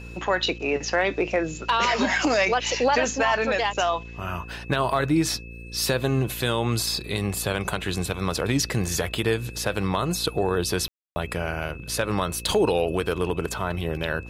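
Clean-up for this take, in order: de-hum 57.9 Hz, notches 9; notch 2600 Hz, Q 30; room tone fill 10.88–11.16

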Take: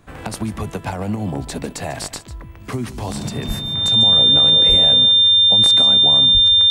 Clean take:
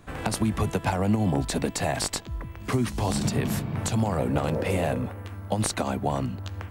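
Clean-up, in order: notch 3600 Hz, Q 30; 3.47–3.59 HPF 140 Hz 24 dB/oct; 4.68–4.8 HPF 140 Hz 24 dB/oct; 6.33–6.45 HPF 140 Hz 24 dB/oct; inverse comb 0.147 s -14.5 dB

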